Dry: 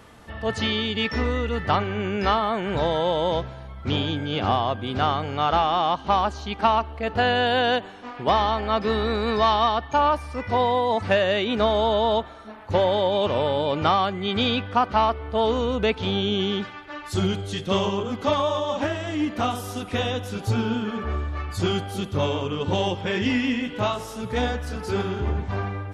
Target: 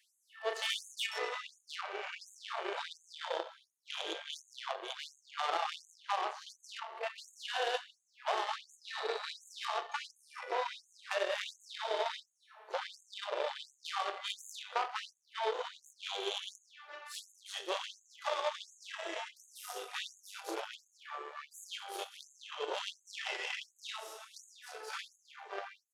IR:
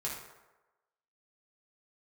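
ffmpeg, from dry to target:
-filter_complex "[0:a]acrossover=split=210[link_01][link_02];[link_01]dynaudnorm=framelen=250:gausssize=21:maxgain=12dB[link_03];[link_03][link_02]amix=inputs=2:normalize=0,asoftclip=type=tanh:threshold=-14dB,bass=frequency=250:gain=-9,treble=frequency=4000:gain=1,aecho=1:1:30|69|119.7|185.6|271.3:0.631|0.398|0.251|0.158|0.1,aeval=exprs='0.447*(cos(1*acos(clip(val(0)/0.447,-1,1)))-cos(1*PI/2))+0.0708*(cos(4*acos(clip(val(0)/0.447,-1,1)))-cos(4*PI/2))+0.0447*(cos(6*acos(clip(val(0)/0.447,-1,1)))-cos(6*PI/2))+0.0501*(cos(7*acos(clip(val(0)/0.447,-1,1)))-cos(7*PI/2))':channel_layout=same,acompressor=threshold=-27dB:ratio=10,afftfilt=real='re*gte(b*sr/1024,320*pow(6400/320,0.5+0.5*sin(2*PI*1.4*pts/sr)))':imag='im*gte(b*sr/1024,320*pow(6400/320,0.5+0.5*sin(2*PI*1.4*pts/sr)))':win_size=1024:overlap=0.75,volume=-1dB"

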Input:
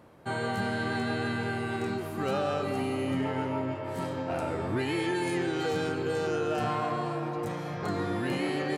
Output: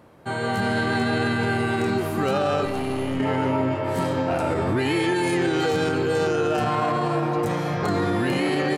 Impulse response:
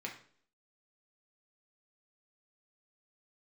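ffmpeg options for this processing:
-filter_complex "[0:a]dynaudnorm=framelen=380:gausssize=3:maxgain=6.5dB,alimiter=limit=-18dB:level=0:latency=1:release=31,asettb=1/sr,asplit=3[link_01][link_02][link_03];[link_01]atrim=end=2.654[link_04];[link_02]atrim=start=2.65:end=3.2,asetpts=PTS-STARTPTS,afade=type=in:duration=0.004:curve=qsin,afade=type=out:start_time=0.546:duration=0.004:curve=qsin,aeval=exprs='(tanh(15.8*val(0)+0.65)-tanh(0.65))/15.8':channel_layout=same[link_05];[link_03]atrim=start=3.196[link_06];[link_04][link_05]acrossfade=duration=0.004:curve1=hsin:curve2=qsin[link_07];[link_07][link_06]acrossfade=duration=0.004:curve1=qsin:curve2=hsin,volume=3.5dB"

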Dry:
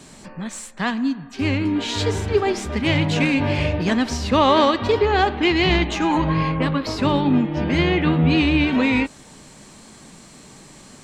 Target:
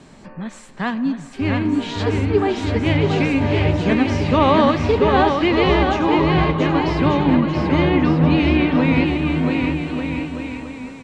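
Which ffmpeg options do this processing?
ffmpeg -i in.wav -filter_complex "[0:a]aemphasis=mode=reproduction:type=75fm,asplit=2[link_01][link_02];[link_02]aecho=0:1:680|1190|1572|1859|2075:0.631|0.398|0.251|0.158|0.1[link_03];[link_01][link_03]amix=inputs=2:normalize=0" out.wav

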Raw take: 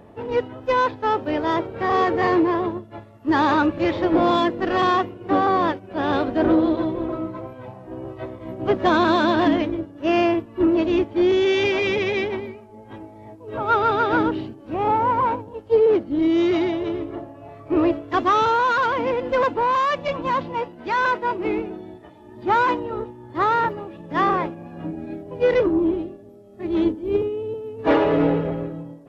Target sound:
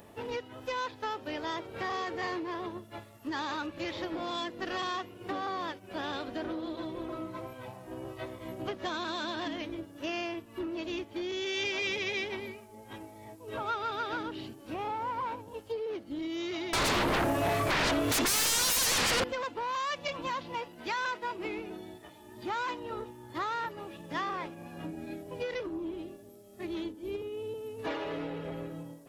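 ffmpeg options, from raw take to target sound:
ffmpeg -i in.wav -filter_complex "[0:a]acompressor=threshold=-27dB:ratio=6,crystalizer=i=7.5:c=0,asettb=1/sr,asplit=3[link_01][link_02][link_03];[link_01]atrim=end=16.734[link_04];[link_02]atrim=start=16.73:end=19.24,asetpts=PTS-STARTPTS,afade=type=in:duration=0.004:curve=qsin,afade=type=out:start_time=2.506:duration=0.004:curve=qsin,aeval=exprs='0.158*sin(PI/2*7.94*val(0)/0.158)':channel_layout=same[link_05];[link_03]atrim=start=19.236[link_06];[link_04][link_05]acrossfade=duration=0.004:curve1=hsin:curve2=qsin[link_07];[link_07][link_06]acrossfade=duration=0.004:curve1=qsin:curve2=hsin,volume=-8.5dB" out.wav

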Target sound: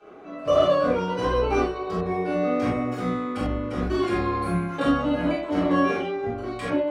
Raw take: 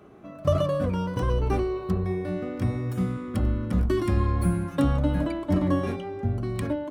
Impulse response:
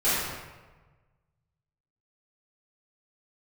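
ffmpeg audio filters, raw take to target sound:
-filter_complex "[0:a]bandreject=frequency=74.68:width_type=h:width=4,bandreject=frequency=149.36:width_type=h:width=4,bandreject=frequency=224.04:width_type=h:width=4,bandreject=frequency=298.72:width_type=h:width=4,bandreject=frequency=373.4:width_type=h:width=4,bandreject=frequency=448.08:width_type=h:width=4,bandreject=frequency=522.76:width_type=h:width=4,bandreject=frequency=597.44:width_type=h:width=4,bandreject=frequency=672.12:width_type=h:width=4,bandreject=frequency=746.8:width_type=h:width=4,bandreject=frequency=821.48:width_type=h:width=4,bandreject=frequency=896.16:width_type=h:width=4,bandreject=frequency=970.84:width_type=h:width=4,bandreject=frequency=1045.52:width_type=h:width=4,bandreject=frequency=1120.2:width_type=h:width=4,bandreject=frequency=1194.88:width_type=h:width=4,bandreject=frequency=1269.56:width_type=h:width=4,bandreject=frequency=1344.24:width_type=h:width=4,bandreject=frequency=1418.92:width_type=h:width=4,bandreject=frequency=1493.6:width_type=h:width=4,bandreject=frequency=1568.28:width_type=h:width=4,bandreject=frequency=1642.96:width_type=h:width=4,bandreject=frequency=1717.64:width_type=h:width=4,bandreject=frequency=1792.32:width_type=h:width=4,bandreject=frequency=1867:width_type=h:width=4,bandreject=frequency=1941.68:width_type=h:width=4,bandreject=frequency=2016.36:width_type=h:width=4,bandreject=frequency=2091.04:width_type=h:width=4,bandreject=frequency=2165.72:width_type=h:width=4,bandreject=frequency=2240.4:width_type=h:width=4,bandreject=frequency=2315.08:width_type=h:width=4,bandreject=frequency=2389.76:width_type=h:width=4,bandreject=frequency=2464.44:width_type=h:width=4,bandreject=frequency=2539.12:width_type=h:width=4,bandreject=frequency=2613.8:width_type=h:width=4,bandreject=frequency=2688.48:width_type=h:width=4,bandreject=frequency=2763.16:width_type=h:width=4[link_01];[1:a]atrim=start_sample=2205,afade=type=out:start_time=0.15:duration=0.01,atrim=end_sample=7056[link_02];[link_01][link_02]afir=irnorm=-1:irlink=0,dynaudnorm=framelen=140:gausssize=9:maxgain=11.5dB,acrossover=split=300 7100:gain=0.178 1 0.126[link_03][link_04][link_05];[link_03][link_04][link_05]amix=inputs=3:normalize=0,volume=-4.5dB"

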